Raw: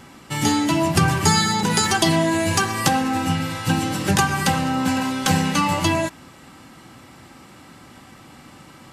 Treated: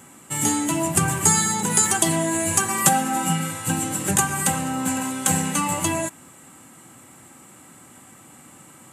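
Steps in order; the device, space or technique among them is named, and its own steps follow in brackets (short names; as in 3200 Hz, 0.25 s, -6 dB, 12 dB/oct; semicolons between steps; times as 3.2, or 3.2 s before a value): 2.68–3.51 comb 5.2 ms, depth 92%; budget condenser microphone (HPF 100 Hz; resonant high shelf 6300 Hz +8 dB, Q 3); gain -4 dB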